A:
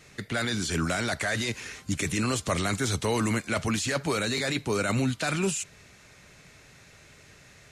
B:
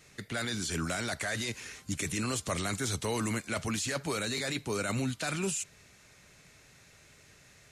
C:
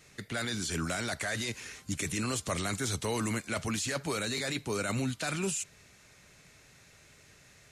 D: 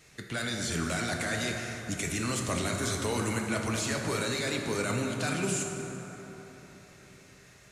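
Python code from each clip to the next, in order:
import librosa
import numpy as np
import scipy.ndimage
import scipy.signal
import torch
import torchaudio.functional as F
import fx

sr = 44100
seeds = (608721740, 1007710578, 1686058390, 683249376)

y1 = fx.high_shelf(x, sr, hz=6100.0, db=6.0)
y1 = y1 * 10.0 ** (-6.0 / 20.0)
y2 = y1
y3 = fx.rev_plate(y2, sr, seeds[0], rt60_s=4.1, hf_ratio=0.4, predelay_ms=0, drr_db=1.0)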